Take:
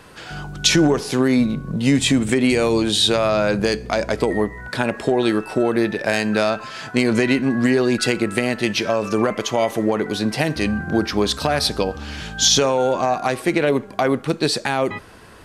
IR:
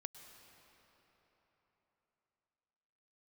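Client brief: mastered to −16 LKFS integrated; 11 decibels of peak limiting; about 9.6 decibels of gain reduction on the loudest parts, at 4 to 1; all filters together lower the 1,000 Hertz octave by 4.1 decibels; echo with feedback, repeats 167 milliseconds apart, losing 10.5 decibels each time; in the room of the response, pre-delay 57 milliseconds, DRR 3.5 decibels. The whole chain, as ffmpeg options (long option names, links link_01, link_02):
-filter_complex "[0:a]equalizer=frequency=1000:width_type=o:gain=-6,acompressor=threshold=-24dB:ratio=4,alimiter=limit=-19dB:level=0:latency=1,aecho=1:1:167|334|501:0.299|0.0896|0.0269,asplit=2[link_01][link_02];[1:a]atrim=start_sample=2205,adelay=57[link_03];[link_02][link_03]afir=irnorm=-1:irlink=0,volume=0.5dB[link_04];[link_01][link_04]amix=inputs=2:normalize=0,volume=11.5dB"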